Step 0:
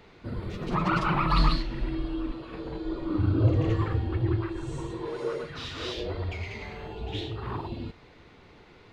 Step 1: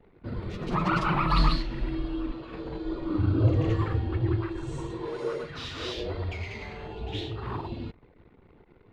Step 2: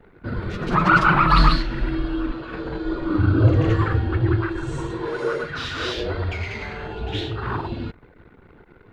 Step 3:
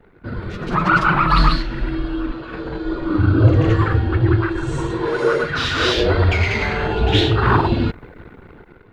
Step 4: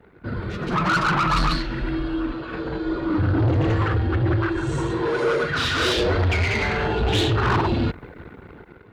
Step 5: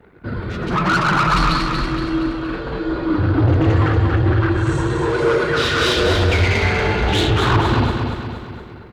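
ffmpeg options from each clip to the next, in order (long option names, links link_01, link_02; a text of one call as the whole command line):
ffmpeg -i in.wav -af "anlmdn=0.00398" out.wav
ffmpeg -i in.wav -af "equalizer=frequency=1500:width=3.4:gain=10,volume=6.5dB" out.wav
ffmpeg -i in.wav -af "dynaudnorm=framelen=580:gausssize=5:maxgain=14.5dB" out.wav
ffmpeg -i in.wav -af "highpass=44,asoftclip=type=tanh:threshold=-16dB" out.wav
ffmpeg -i in.wav -af "aecho=1:1:235|470|705|940|1175|1410:0.562|0.281|0.141|0.0703|0.0351|0.0176,volume=3dB" out.wav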